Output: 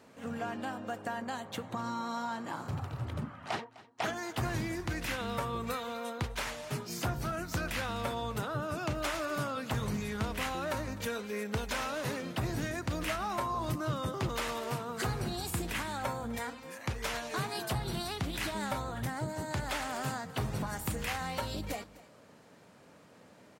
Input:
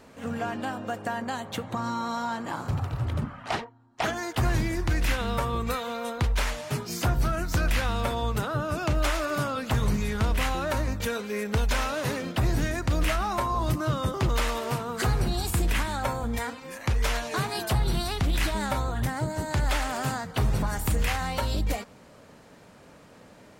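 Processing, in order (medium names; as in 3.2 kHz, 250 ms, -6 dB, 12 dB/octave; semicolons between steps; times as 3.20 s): high-pass 100 Hz 12 dB/octave; on a send: delay 254 ms -19.5 dB; on the sum: trim -6 dB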